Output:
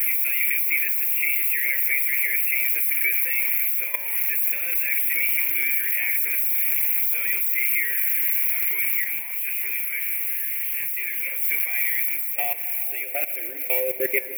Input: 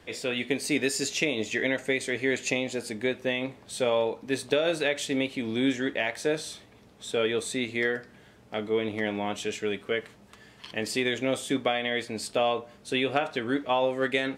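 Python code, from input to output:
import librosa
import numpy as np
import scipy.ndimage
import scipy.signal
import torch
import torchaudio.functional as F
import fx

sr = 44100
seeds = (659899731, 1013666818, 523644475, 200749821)

y = x + 0.5 * 10.0 ** (-15.5 / 20.0) * np.diff(np.sign(x), prepend=np.sign(x[:1]))
y = fx.filter_sweep_highpass(y, sr, from_hz=1000.0, to_hz=410.0, start_s=11.72, end_s=14.29, q=5.6)
y = fx.level_steps(y, sr, step_db=19)
y = y + 0.53 * np.pad(y, (int(5.7 * sr / 1000.0), 0))[:len(y)]
y = fx.rider(y, sr, range_db=4, speed_s=0.5)
y = fx.curve_eq(y, sr, hz=(320.0, 800.0, 1200.0, 2300.0, 3800.0, 6800.0, 12000.0), db=(0, -18, -23, 13, -27, -24, 11))
y = fx.rev_plate(y, sr, seeds[0], rt60_s=4.0, hf_ratio=0.4, predelay_ms=100, drr_db=13.0)
y = fx.detune_double(y, sr, cents=59, at=(9.04, 11.42))
y = y * librosa.db_to_amplitude(3.5)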